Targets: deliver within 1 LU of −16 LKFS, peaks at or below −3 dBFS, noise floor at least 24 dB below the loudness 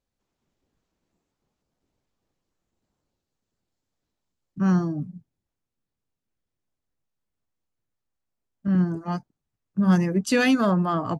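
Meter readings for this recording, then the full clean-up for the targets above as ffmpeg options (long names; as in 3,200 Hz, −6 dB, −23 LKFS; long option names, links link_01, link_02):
integrated loudness −23.5 LKFS; sample peak −9.0 dBFS; target loudness −16.0 LKFS
→ -af "volume=7.5dB,alimiter=limit=-3dB:level=0:latency=1"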